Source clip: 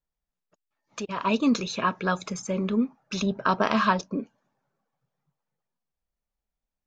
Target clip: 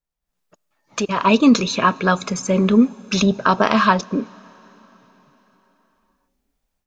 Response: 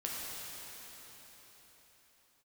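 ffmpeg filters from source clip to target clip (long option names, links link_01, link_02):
-filter_complex "[0:a]dynaudnorm=framelen=200:gausssize=3:maxgain=13.5dB,asplit=2[link_01][link_02];[1:a]atrim=start_sample=2205,highshelf=frequency=5300:gain=7[link_03];[link_02][link_03]afir=irnorm=-1:irlink=0,volume=-26dB[link_04];[link_01][link_04]amix=inputs=2:normalize=0,volume=-1dB"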